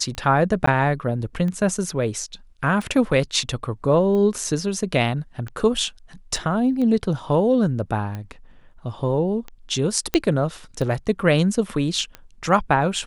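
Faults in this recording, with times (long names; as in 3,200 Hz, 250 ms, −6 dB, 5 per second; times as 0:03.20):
scratch tick 45 rpm −19 dBFS
0:00.66–0:00.67: drop-out 14 ms
0:06.36: drop-out 2.9 ms
0:10.14: click −6 dBFS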